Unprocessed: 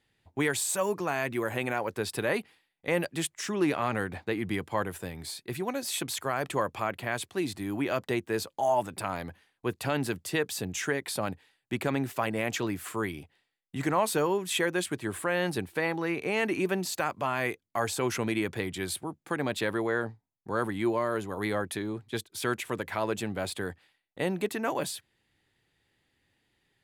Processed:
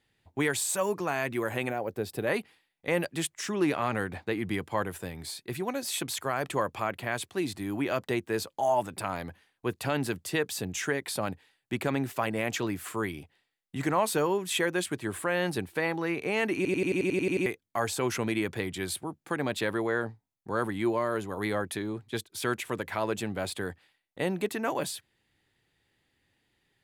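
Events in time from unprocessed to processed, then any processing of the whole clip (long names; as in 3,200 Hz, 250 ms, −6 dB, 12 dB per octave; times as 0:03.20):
0:01.70–0:02.27: gain on a spectral selection 830–12,000 Hz −8 dB
0:16.56: stutter in place 0.09 s, 10 plays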